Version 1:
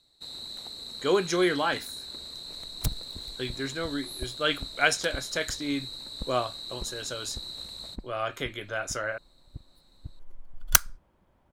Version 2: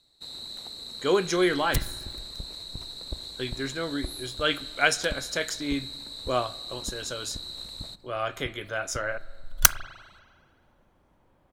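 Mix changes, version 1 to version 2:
second sound: entry -1.10 s; reverb: on, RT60 1.7 s

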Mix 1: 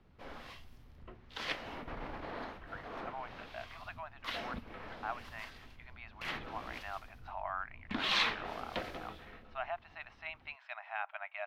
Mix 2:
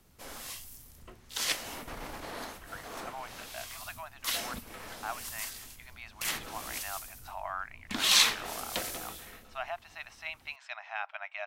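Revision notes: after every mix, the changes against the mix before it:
master: remove air absorption 340 m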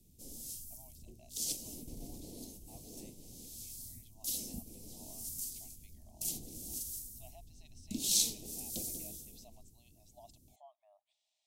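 speech: entry -2.35 s; master: add Chebyshev band-stop 280–6900 Hz, order 2

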